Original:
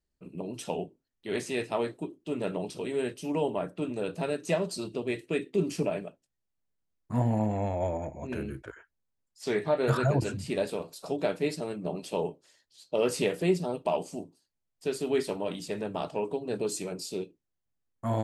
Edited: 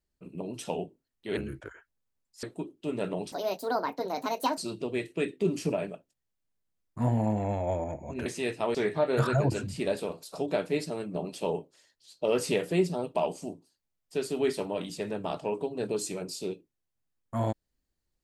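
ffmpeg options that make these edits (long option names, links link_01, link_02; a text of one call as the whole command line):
ffmpeg -i in.wav -filter_complex "[0:a]asplit=7[link_01][link_02][link_03][link_04][link_05][link_06][link_07];[link_01]atrim=end=1.372[link_08];[link_02]atrim=start=8.388:end=9.452[link_09];[link_03]atrim=start=1.858:end=2.754[link_10];[link_04]atrim=start=2.75:end=4.71,asetpts=PTS-STARTPTS,asetrate=68796,aresample=44100[link_11];[link_05]atrim=start=4.706:end=8.392[link_12];[link_06]atrim=start=1.368:end=1.862[link_13];[link_07]atrim=start=9.448[link_14];[link_08][link_09]acrossfade=duration=0.004:curve1=hsin:curve2=hsin[link_15];[link_15][link_10]acrossfade=duration=0.004:curve1=hsin:curve2=hsin[link_16];[link_16][link_11]acrossfade=duration=0.004:curve1=hsin:curve2=hsin[link_17];[link_17][link_12]acrossfade=duration=0.004:curve1=hsin:curve2=hsin[link_18];[link_18][link_13]acrossfade=duration=0.004:curve1=hsin:curve2=hsin[link_19];[link_19][link_14]acrossfade=duration=0.004:curve1=hsin:curve2=hsin" out.wav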